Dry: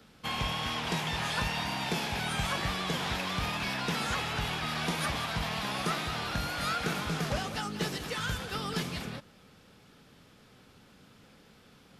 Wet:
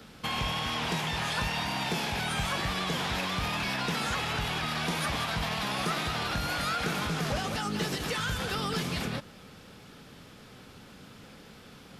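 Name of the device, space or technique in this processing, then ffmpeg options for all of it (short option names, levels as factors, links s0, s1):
clipper into limiter: -af "asoftclip=type=hard:threshold=0.0708,alimiter=level_in=2:limit=0.0631:level=0:latency=1:release=93,volume=0.501,volume=2.37"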